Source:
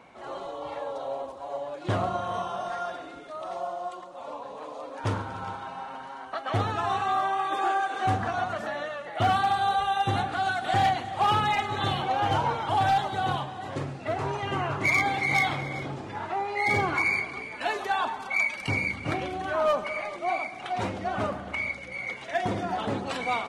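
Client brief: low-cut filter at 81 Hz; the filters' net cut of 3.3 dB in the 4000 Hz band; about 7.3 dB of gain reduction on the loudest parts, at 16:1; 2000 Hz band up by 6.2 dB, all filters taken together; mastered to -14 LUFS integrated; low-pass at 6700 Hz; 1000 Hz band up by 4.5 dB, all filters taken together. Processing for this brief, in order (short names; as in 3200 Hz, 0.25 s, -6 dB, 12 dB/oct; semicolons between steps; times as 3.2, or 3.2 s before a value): HPF 81 Hz; LPF 6700 Hz; bell 1000 Hz +5 dB; bell 2000 Hz +8.5 dB; bell 4000 Hz -9 dB; compressor 16:1, threshold -21 dBFS; gain +13 dB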